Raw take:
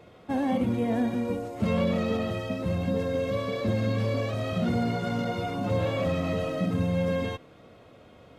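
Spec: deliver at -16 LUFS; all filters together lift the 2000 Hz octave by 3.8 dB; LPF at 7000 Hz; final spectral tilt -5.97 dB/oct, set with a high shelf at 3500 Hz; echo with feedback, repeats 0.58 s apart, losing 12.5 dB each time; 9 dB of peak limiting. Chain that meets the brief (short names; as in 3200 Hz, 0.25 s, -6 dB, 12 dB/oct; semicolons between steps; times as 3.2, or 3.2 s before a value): LPF 7000 Hz; bell 2000 Hz +6 dB; high shelf 3500 Hz -4 dB; limiter -23.5 dBFS; feedback echo 0.58 s, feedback 24%, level -12.5 dB; gain +16 dB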